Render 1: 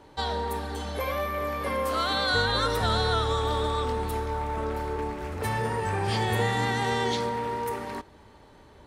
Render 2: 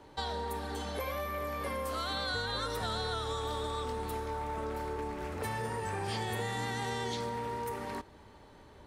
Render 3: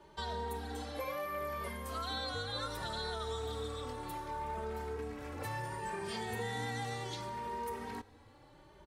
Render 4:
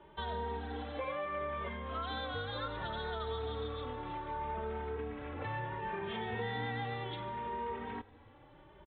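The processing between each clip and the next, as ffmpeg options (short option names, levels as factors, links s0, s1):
-filter_complex "[0:a]acrossover=split=150|4900[s0][s1][s2];[s0]acompressor=threshold=0.00891:ratio=4[s3];[s1]acompressor=threshold=0.0251:ratio=4[s4];[s2]acompressor=threshold=0.00708:ratio=4[s5];[s3][s4][s5]amix=inputs=3:normalize=0,volume=0.75"
-filter_complex "[0:a]asplit=2[s0][s1];[s1]adelay=2.9,afreqshift=0.68[s2];[s0][s2]amix=inputs=2:normalize=1,volume=0.891"
-af "aresample=8000,aresample=44100,volume=1.12"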